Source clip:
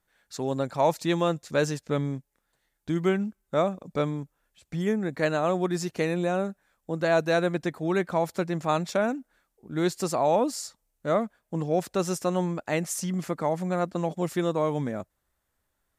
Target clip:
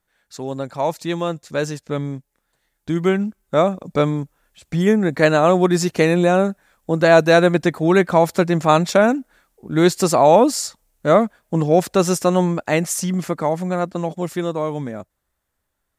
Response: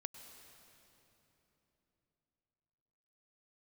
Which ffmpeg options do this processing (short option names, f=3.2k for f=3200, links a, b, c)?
-af "dynaudnorm=f=310:g=21:m=11.5dB,volume=1.5dB"